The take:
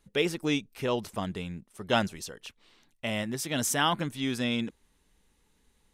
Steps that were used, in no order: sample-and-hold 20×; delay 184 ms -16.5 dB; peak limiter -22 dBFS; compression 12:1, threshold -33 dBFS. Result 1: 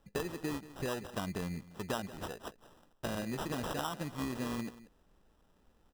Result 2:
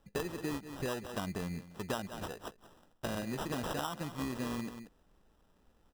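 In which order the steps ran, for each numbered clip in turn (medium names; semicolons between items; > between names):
compression > delay > sample-and-hold > peak limiter; sample-and-hold > delay > compression > peak limiter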